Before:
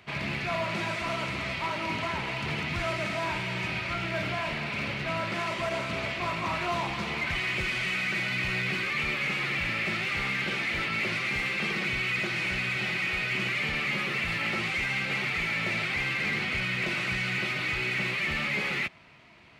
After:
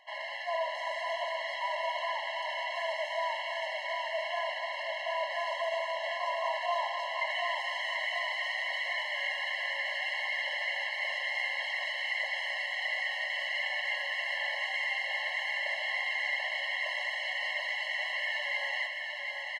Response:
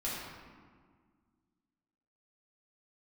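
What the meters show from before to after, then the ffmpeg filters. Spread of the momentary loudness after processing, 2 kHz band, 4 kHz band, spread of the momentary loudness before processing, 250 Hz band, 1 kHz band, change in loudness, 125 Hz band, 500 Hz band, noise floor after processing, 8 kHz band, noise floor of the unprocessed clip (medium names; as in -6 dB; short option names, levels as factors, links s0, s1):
3 LU, -3.5 dB, -2.0 dB, 3 LU, under -40 dB, -0.5 dB, -3.5 dB, under -40 dB, -0.5 dB, -38 dBFS, -8.0 dB, -34 dBFS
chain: -af "lowpass=f=3900:p=1,bandreject=f=2300:w=13,aecho=1:1:736|1472|2208|2944|3680|4416|5152|5888:0.596|0.334|0.187|0.105|0.0586|0.0328|0.0184|0.0103,afftfilt=real='re*eq(mod(floor(b*sr/1024/550),2),1)':imag='im*eq(mod(floor(b*sr/1024/550),2),1)':win_size=1024:overlap=0.75"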